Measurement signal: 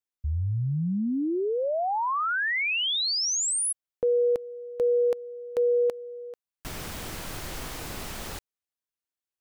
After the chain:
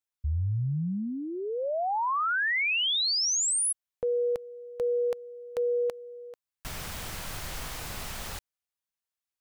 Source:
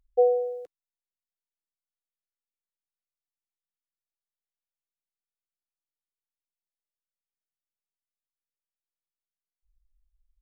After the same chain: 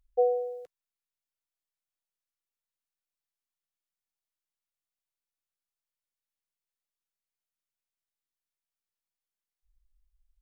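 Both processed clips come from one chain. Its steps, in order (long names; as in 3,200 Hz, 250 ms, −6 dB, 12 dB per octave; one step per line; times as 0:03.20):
parametric band 320 Hz −8 dB 1.3 octaves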